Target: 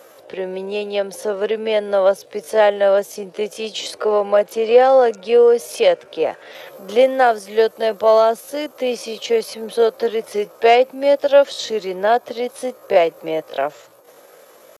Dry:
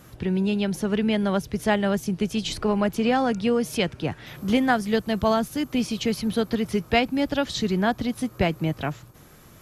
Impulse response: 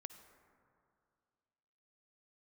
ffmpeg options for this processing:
-af "acontrast=74,atempo=0.65,highpass=f=530:t=q:w=4.9,volume=0.668"

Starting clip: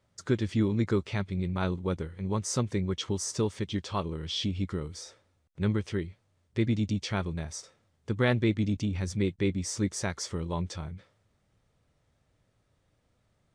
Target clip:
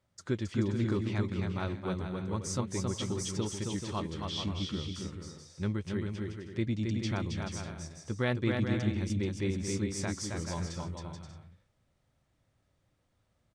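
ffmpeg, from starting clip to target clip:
-filter_complex "[0:a]bandreject=f=440:w=12,asplit=2[s0][s1];[s1]aecho=0:1:270|432|529.2|587.5|622.5:0.631|0.398|0.251|0.158|0.1[s2];[s0][s2]amix=inputs=2:normalize=0,volume=0.562"

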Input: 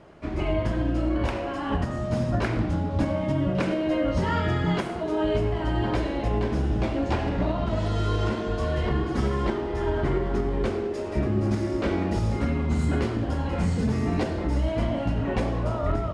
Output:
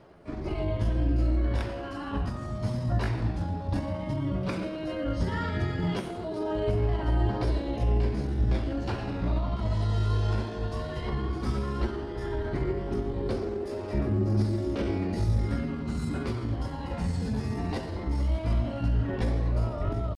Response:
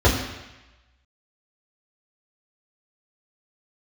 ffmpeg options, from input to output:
-filter_complex "[0:a]aphaser=in_gain=1:out_gain=1:delay=1.2:decay=0.28:speed=0.18:type=triangular,atempo=0.8,aexciter=amount=1.4:drive=5.8:freq=4000,asplit=2[s0][s1];[1:a]atrim=start_sample=2205[s2];[s1][s2]afir=irnorm=-1:irlink=0,volume=0.0133[s3];[s0][s3]amix=inputs=2:normalize=0,volume=0.473"

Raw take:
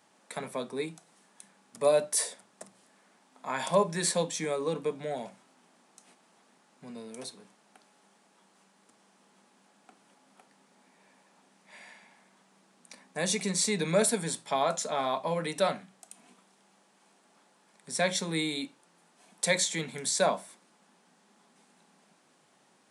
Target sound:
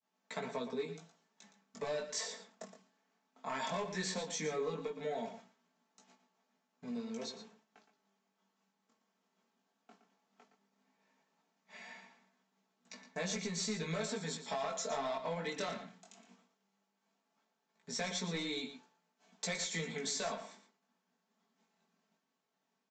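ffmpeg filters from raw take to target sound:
-filter_complex "[0:a]acrossover=split=990[s0][s1];[s0]alimiter=limit=0.0708:level=0:latency=1:release=246[s2];[s2][s1]amix=inputs=2:normalize=0,agate=range=0.0224:threshold=0.00224:ratio=3:detection=peak,aresample=16000,asoftclip=type=hard:threshold=0.0501,aresample=44100,aecho=1:1:4.5:0.55,acompressor=threshold=0.0224:ratio=10,flanger=delay=16:depth=6.3:speed=0.16,asplit=2[s3][s4];[s4]adelay=116.6,volume=0.316,highshelf=f=4000:g=-2.62[s5];[s3][s5]amix=inputs=2:normalize=0,volume=1.12"

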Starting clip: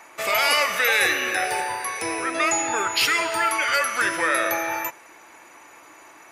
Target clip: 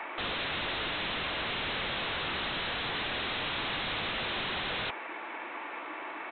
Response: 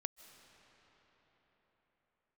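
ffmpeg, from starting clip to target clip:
-af "highpass=f=200:w=0.5412,highpass=f=200:w=1.3066,alimiter=limit=0.133:level=0:latency=1:release=160,aresample=8000,aeval=exprs='0.0141*(abs(mod(val(0)/0.0141+3,4)-2)-1)':c=same,aresample=44100,volume=2.51"

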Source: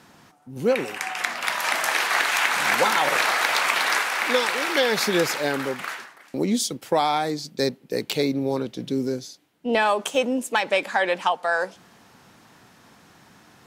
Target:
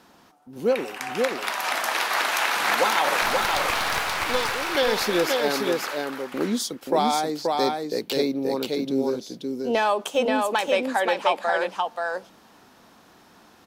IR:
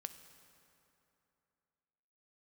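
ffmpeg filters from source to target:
-filter_complex "[0:a]equalizer=f=125:t=o:w=1:g=-11,equalizer=f=2000:t=o:w=1:g=-5,equalizer=f=8000:t=o:w=1:g=-5,asettb=1/sr,asplit=3[s0][s1][s2];[s0]atrim=end=3.224[s3];[s1]atrim=start=3.22:end=4.72,asetpts=PTS-STARTPTS,afade=t=in:d=0.004:c=qsin,afade=t=out:st=1.496:d=0.004:c=qsin,aeval=exprs='clip(val(0),-1,0.0376)':c=same[s4];[s2]atrim=start=4.716[s5];[s3][s4]acrossfade=d=0.004:c1=hsin:c2=qsin[s6];[s6][s5]acrossfade=d=0.004:c1=qsin:c2=hsin,aecho=1:1:530:0.708"

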